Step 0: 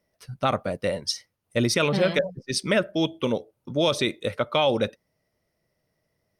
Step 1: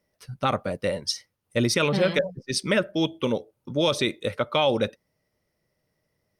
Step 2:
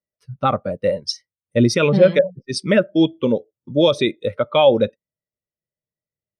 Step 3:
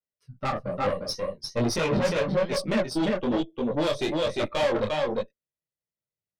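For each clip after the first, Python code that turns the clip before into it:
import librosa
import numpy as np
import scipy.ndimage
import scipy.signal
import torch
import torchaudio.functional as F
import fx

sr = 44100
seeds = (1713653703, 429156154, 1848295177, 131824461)

y1 = fx.notch(x, sr, hz=670.0, q=13.0)
y2 = fx.spectral_expand(y1, sr, expansion=1.5)
y2 = y2 * librosa.db_to_amplitude(7.5)
y3 = y2 + 10.0 ** (-3.5 / 20.0) * np.pad(y2, (int(351 * sr / 1000.0), 0))[:len(y2)]
y3 = fx.tube_stage(y3, sr, drive_db=17.0, bias=0.65)
y3 = fx.detune_double(y3, sr, cents=39)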